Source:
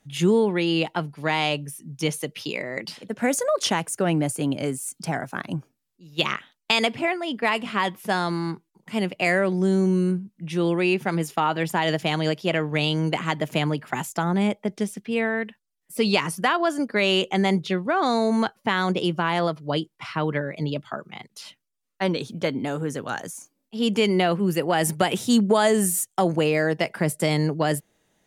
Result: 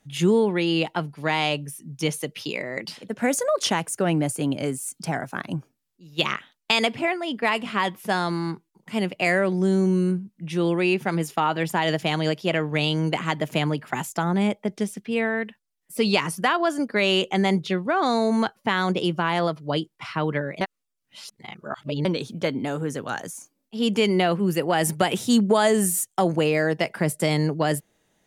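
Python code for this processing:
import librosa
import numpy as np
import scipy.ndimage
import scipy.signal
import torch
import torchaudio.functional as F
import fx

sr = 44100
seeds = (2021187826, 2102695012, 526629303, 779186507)

y = fx.edit(x, sr, fx.reverse_span(start_s=20.61, length_s=1.44), tone=tone)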